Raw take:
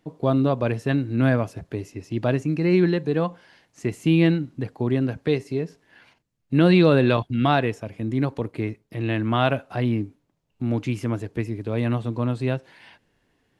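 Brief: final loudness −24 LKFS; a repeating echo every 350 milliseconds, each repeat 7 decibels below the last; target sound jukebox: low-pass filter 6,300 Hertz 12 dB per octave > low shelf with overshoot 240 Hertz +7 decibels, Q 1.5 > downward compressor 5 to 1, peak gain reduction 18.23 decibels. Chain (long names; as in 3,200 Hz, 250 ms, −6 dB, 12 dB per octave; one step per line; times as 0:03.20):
low-pass filter 6,300 Hz 12 dB per octave
low shelf with overshoot 240 Hz +7 dB, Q 1.5
repeating echo 350 ms, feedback 45%, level −7 dB
downward compressor 5 to 1, threshold −28 dBFS
level +7 dB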